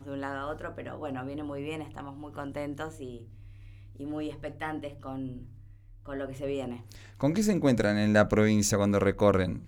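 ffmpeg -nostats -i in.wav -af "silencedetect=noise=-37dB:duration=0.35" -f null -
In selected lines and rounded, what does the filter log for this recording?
silence_start: 3.17
silence_end: 4.00 | silence_duration: 0.83
silence_start: 5.42
silence_end: 6.08 | silence_duration: 0.65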